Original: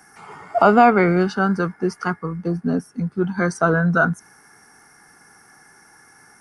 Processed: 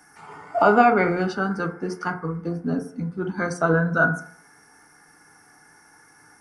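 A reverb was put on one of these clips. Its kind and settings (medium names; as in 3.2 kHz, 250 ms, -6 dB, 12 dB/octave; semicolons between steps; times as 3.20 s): FDN reverb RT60 0.53 s, low-frequency decay 0.85×, high-frequency decay 0.4×, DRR 4.5 dB; trim -4 dB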